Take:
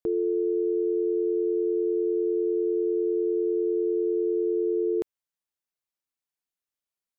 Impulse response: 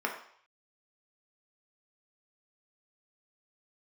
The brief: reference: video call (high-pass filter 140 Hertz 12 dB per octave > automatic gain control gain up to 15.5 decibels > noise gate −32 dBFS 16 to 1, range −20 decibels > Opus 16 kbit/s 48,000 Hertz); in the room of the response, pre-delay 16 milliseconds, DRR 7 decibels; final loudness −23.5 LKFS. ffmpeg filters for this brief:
-filter_complex "[0:a]asplit=2[link_01][link_02];[1:a]atrim=start_sample=2205,adelay=16[link_03];[link_02][link_03]afir=irnorm=-1:irlink=0,volume=-15dB[link_04];[link_01][link_04]amix=inputs=2:normalize=0,highpass=140,dynaudnorm=maxgain=15.5dB,agate=range=-20dB:threshold=-32dB:ratio=16,volume=1.5dB" -ar 48000 -c:a libopus -b:a 16k

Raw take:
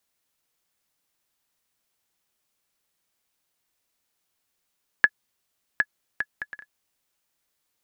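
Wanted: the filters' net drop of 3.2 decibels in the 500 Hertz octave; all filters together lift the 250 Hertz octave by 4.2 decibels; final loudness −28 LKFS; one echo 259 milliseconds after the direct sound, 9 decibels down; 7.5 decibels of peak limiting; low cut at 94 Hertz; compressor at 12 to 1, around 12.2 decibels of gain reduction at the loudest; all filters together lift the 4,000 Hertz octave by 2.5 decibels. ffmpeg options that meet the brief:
ffmpeg -i in.wav -af "highpass=94,equalizer=frequency=250:width_type=o:gain=7.5,equalizer=frequency=500:width_type=o:gain=-6.5,equalizer=frequency=4000:width_type=o:gain=3.5,acompressor=threshold=-27dB:ratio=12,alimiter=limit=-14.5dB:level=0:latency=1,aecho=1:1:259:0.355,volume=13dB" out.wav

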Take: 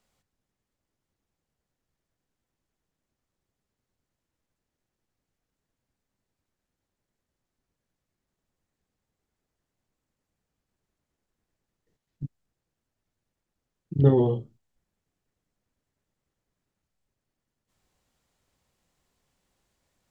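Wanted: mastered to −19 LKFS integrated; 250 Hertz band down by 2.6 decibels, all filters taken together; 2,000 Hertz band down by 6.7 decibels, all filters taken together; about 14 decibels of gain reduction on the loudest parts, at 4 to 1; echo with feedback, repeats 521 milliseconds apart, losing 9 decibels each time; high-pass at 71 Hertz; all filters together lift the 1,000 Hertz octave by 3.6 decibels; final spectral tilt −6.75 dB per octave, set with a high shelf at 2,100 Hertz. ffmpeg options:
ffmpeg -i in.wav -af "highpass=71,equalizer=frequency=250:width_type=o:gain=-4,equalizer=frequency=1000:width_type=o:gain=7.5,equalizer=frequency=2000:width_type=o:gain=-8.5,highshelf=frequency=2100:gain=-5,acompressor=threshold=-31dB:ratio=4,aecho=1:1:521|1042|1563|2084:0.355|0.124|0.0435|0.0152,volume=20.5dB" out.wav

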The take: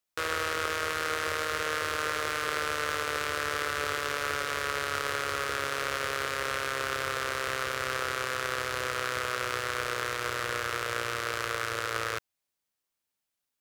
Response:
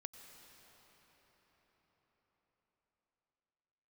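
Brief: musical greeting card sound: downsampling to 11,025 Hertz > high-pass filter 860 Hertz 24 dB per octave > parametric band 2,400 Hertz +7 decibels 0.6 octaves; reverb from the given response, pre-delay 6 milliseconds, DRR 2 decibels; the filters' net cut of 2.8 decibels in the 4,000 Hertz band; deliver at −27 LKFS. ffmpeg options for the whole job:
-filter_complex "[0:a]equalizer=frequency=4000:width_type=o:gain=-7,asplit=2[link_01][link_02];[1:a]atrim=start_sample=2205,adelay=6[link_03];[link_02][link_03]afir=irnorm=-1:irlink=0,volume=2.5dB[link_04];[link_01][link_04]amix=inputs=2:normalize=0,aresample=11025,aresample=44100,highpass=frequency=860:width=0.5412,highpass=frequency=860:width=1.3066,equalizer=frequency=2400:width_type=o:width=0.6:gain=7,volume=1.5dB"

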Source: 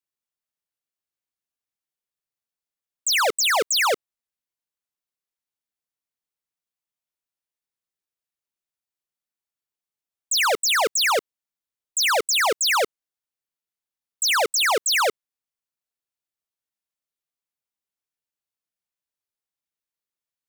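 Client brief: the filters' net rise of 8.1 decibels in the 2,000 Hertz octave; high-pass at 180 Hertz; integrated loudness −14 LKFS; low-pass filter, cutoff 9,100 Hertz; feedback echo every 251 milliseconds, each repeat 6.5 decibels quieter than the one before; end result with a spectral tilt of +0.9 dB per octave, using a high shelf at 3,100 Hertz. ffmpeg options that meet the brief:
ffmpeg -i in.wav -af "highpass=180,lowpass=9100,equalizer=frequency=2000:width_type=o:gain=8,highshelf=frequency=3100:gain=5.5,aecho=1:1:251|502|753|1004|1255|1506:0.473|0.222|0.105|0.0491|0.0231|0.0109,volume=0.5dB" out.wav

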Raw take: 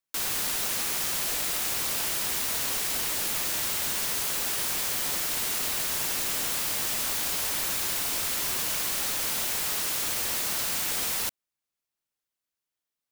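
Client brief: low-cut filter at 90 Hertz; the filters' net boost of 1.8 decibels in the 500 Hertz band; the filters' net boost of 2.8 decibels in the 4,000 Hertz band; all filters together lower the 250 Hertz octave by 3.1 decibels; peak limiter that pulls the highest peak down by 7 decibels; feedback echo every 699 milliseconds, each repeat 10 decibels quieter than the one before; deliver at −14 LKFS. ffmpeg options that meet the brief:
ffmpeg -i in.wav -af "highpass=90,equalizer=frequency=250:width_type=o:gain=-5.5,equalizer=frequency=500:width_type=o:gain=3.5,equalizer=frequency=4000:width_type=o:gain=3.5,alimiter=limit=-21.5dB:level=0:latency=1,aecho=1:1:699|1398|2097|2796:0.316|0.101|0.0324|0.0104,volume=14dB" out.wav

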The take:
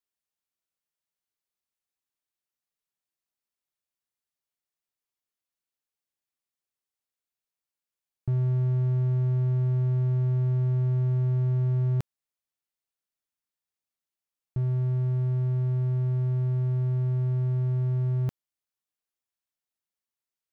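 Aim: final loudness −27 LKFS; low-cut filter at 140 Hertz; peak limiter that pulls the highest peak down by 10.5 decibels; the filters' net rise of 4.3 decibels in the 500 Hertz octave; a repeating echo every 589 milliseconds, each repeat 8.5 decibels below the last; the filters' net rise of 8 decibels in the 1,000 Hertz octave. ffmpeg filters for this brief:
ffmpeg -i in.wav -af "highpass=140,equalizer=frequency=500:width_type=o:gain=5,equalizer=frequency=1000:width_type=o:gain=8,alimiter=level_in=4dB:limit=-24dB:level=0:latency=1,volume=-4dB,aecho=1:1:589|1178|1767|2356:0.376|0.143|0.0543|0.0206,volume=6.5dB" out.wav

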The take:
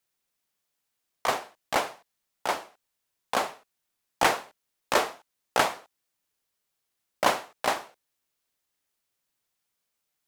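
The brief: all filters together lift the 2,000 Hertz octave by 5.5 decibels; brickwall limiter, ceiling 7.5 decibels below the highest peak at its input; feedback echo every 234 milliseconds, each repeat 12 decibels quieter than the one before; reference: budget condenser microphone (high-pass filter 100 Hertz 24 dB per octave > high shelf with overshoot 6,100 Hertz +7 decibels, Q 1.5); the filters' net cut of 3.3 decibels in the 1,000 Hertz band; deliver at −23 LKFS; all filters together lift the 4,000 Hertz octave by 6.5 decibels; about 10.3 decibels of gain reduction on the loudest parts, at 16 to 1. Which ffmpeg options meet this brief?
ffmpeg -i in.wav -af "equalizer=frequency=1000:width_type=o:gain=-6.5,equalizer=frequency=2000:width_type=o:gain=7.5,equalizer=frequency=4000:width_type=o:gain=8,acompressor=threshold=-25dB:ratio=16,alimiter=limit=-17.5dB:level=0:latency=1,highpass=frequency=100:width=0.5412,highpass=frequency=100:width=1.3066,highshelf=frequency=6100:width_type=q:width=1.5:gain=7,aecho=1:1:234|468|702:0.251|0.0628|0.0157,volume=13dB" out.wav

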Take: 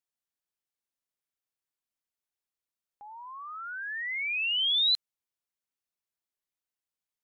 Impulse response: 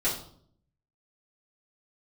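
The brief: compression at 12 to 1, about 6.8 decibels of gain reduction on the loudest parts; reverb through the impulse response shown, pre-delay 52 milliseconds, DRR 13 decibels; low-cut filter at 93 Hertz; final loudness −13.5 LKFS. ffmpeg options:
-filter_complex "[0:a]highpass=93,acompressor=threshold=-30dB:ratio=12,asplit=2[link_01][link_02];[1:a]atrim=start_sample=2205,adelay=52[link_03];[link_02][link_03]afir=irnorm=-1:irlink=0,volume=-22dB[link_04];[link_01][link_04]amix=inputs=2:normalize=0,volume=18dB"

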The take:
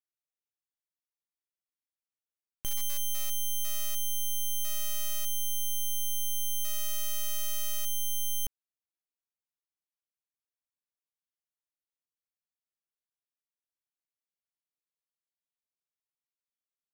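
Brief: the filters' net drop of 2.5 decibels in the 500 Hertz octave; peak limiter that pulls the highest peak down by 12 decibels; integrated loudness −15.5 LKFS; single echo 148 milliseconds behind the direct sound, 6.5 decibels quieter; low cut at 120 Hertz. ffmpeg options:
ffmpeg -i in.wav -af "highpass=120,equalizer=frequency=500:width_type=o:gain=-3.5,alimiter=level_in=10.5dB:limit=-24dB:level=0:latency=1,volume=-10.5dB,aecho=1:1:148:0.473,volume=27dB" out.wav

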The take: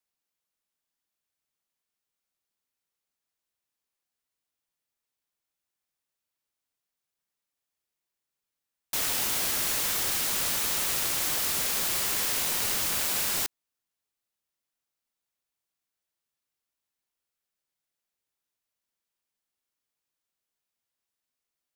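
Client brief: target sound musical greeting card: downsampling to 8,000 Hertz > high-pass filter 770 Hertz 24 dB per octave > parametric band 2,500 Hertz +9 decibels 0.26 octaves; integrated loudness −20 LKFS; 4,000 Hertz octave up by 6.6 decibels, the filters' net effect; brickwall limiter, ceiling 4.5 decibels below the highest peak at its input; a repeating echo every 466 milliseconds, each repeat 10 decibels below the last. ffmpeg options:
ffmpeg -i in.wav -af "equalizer=frequency=4000:width_type=o:gain=7.5,alimiter=limit=-18dB:level=0:latency=1,aecho=1:1:466|932|1398|1864:0.316|0.101|0.0324|0.0104,aresample=8000,aresample=44100,highpass=frequency=770:width=0.5412,highpass=frequency=770:width=1.3066,equalizer=frequency=2500:width_type=o:width=0.26:gain=9,volume=10dB" out.wav

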